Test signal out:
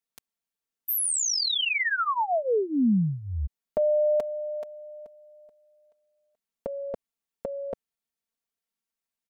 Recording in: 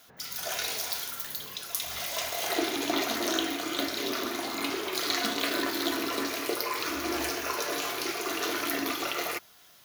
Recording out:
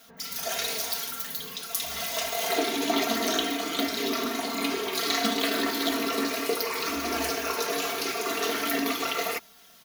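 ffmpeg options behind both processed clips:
ffmpeg -i in.wav -af "equalizer=frequency=170:width=0.48:gain=3.5,aecho=1:1:4.4:0.81" out.wav

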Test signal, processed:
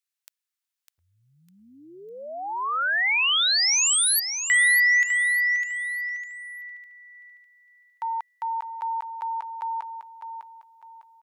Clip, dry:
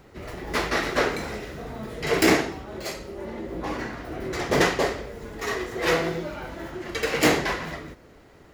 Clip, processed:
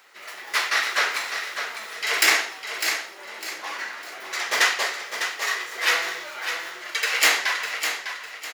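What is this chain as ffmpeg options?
ffmpeg -i in.wav -af "highpass=1400,aecho=1:1:603|1206|1809|2412:0.398|0.131|0.0434|0.0143,volume=6.5dB" out.wav

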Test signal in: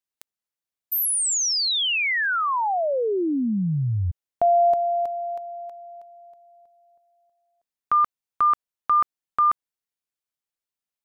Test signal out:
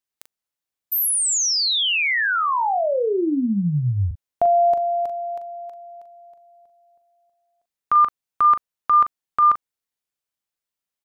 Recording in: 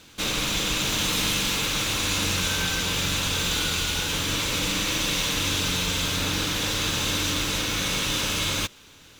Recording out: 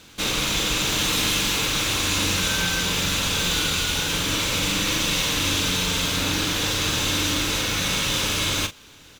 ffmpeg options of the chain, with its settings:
ffmpeg -i in.wav -filter_complex "[0:a]asplit=2[link_01][link_02];[link_02]adelay=40,volume=-9.5dB[link_03];[link_01][link_03]amix=inputs=2:normalize=0,volume=2dB" out.wav

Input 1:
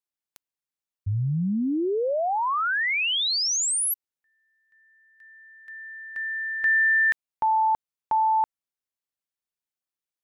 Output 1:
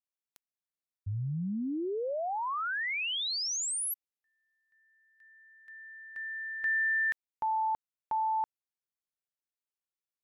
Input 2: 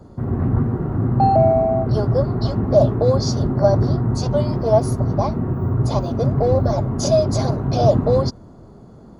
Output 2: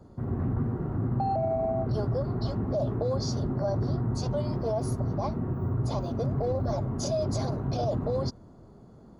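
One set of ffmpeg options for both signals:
ffmpeg -i in.wav -af "alimiter=limit=-12dB:level=0:latency=1:release=30,volume=-8.5dB" out.wav

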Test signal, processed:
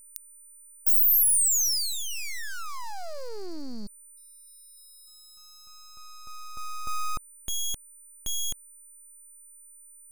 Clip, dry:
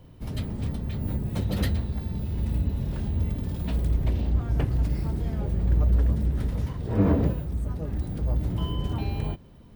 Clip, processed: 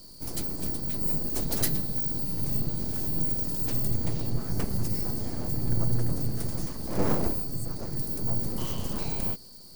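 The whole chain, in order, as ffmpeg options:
ffmpeg -i in.wav -af "aeval=exprs='val(0)+0.00141*sin(2*PI*4500*n/s)':channel_layout=same,aeval=exprs='abs(val(0))':channel_layout=same,aexciter=amount=6.7:drive=4.1:freq=4800,volume=-2dB" out.wav

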